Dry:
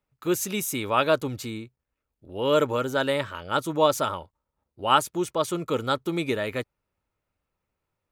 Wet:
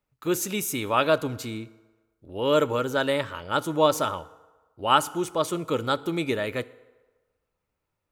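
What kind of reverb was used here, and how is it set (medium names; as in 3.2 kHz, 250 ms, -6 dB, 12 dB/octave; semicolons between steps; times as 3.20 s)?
FDN reverb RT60 1.3 s, low-frequency decay 0.7×, high-frequency decay 0.65×, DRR 16 dB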